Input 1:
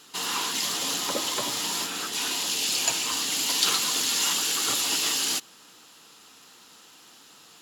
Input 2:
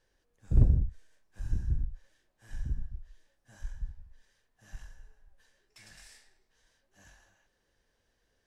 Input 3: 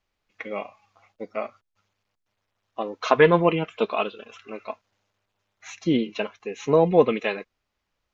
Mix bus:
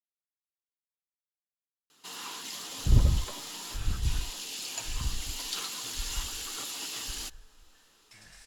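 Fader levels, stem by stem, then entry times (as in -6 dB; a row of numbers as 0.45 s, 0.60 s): -12.0 dB, +0.5 dB, mute; 1.90 s, 2.35 s, mute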